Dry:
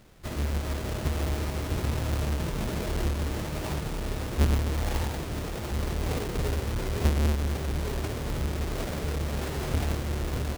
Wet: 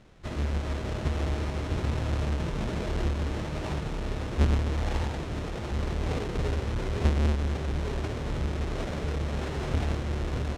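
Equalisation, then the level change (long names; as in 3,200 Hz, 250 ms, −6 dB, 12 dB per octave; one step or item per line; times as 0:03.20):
high-frequency loss of the air 79 metres
notch filter 4,700 Hz, Q 24
0.0 dB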